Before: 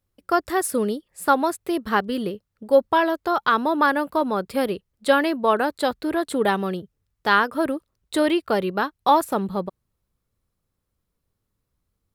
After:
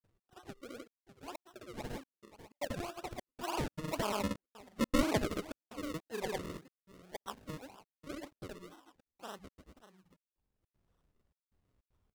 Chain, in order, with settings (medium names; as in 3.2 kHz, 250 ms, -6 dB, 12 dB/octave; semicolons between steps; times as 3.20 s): Doppler pass-by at 4.79 s, 18 m/s, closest 4.7 m; in parallel at +3 dB: compression, threshold -36 dBFS, peak gain reduction 21 dB; on the sum: rippled Chebyshev low-pass 3.6 kHz, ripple 6 dB; multi-tap echo 66/542 ms -17/-17 dB; upward compressor, threshold -44 dBFS; on a send at -18 dB: high-pass 900 Hz 24 dB/octave + reverberation RT60 0.80 s, pre-delay 6 ms; on the sum: decimation with a swept rate 38×, swing 100% 1.9 Hz; granulator, grains 20 per s; trance gate "xx.xxxxxx..x" 155 bpm -60 dB; trim -4.5 dB